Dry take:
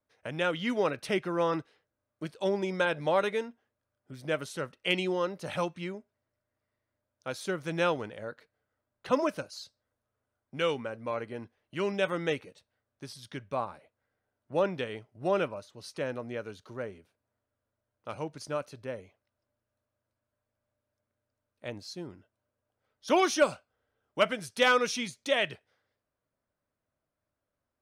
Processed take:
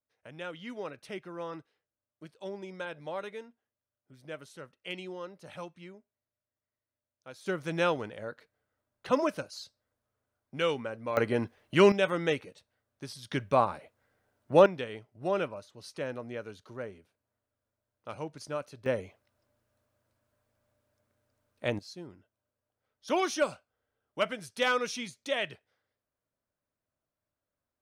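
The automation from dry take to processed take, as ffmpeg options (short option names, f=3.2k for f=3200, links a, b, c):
-af "asetnsamples=n=441:p=0,asendcmd='7.46 volume volume 0dB;11.17 volume volume 11dB;11.92 volume volume 1.5dB;13.31 volume volume 8dB;14.66 volume volume -2dB;18.86 volume volume 8dB;21.79 volume volume -4dB',volume=-11dB"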